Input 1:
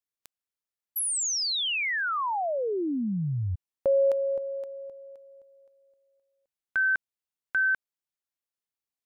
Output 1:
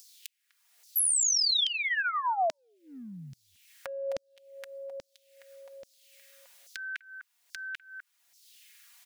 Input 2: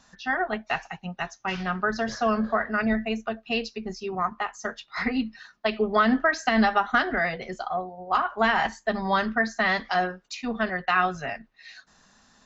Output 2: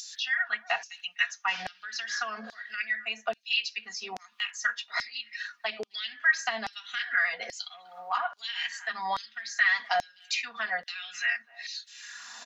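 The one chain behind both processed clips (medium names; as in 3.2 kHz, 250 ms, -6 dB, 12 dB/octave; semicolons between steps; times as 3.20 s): high-pass 95 Hz; comb 4.2 ms, depth 60%; speakerphone echo 250 ms, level -28 dB; compression 6:1, threshold -25 dBFS; LFO high-pass saw down 1.2 Hz 590–5600 Hz; high-order bell 660 Hz -8.5 dB 2.3 oct; upward compressor, threshold -35 dBFS; trim +2.5 dB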